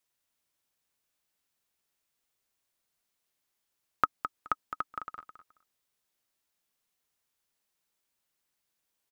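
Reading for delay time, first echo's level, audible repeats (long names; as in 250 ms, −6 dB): 212 ms, −9.5 dB, 2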